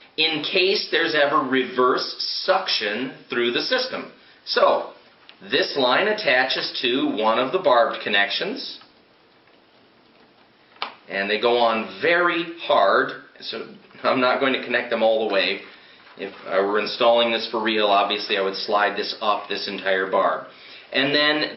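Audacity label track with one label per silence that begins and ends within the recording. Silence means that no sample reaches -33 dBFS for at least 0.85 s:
8.770000	10.820000	silence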